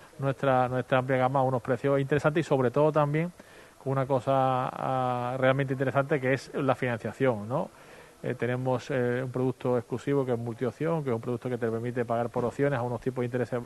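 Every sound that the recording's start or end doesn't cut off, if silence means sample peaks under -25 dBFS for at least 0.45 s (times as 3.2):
3.87–7.64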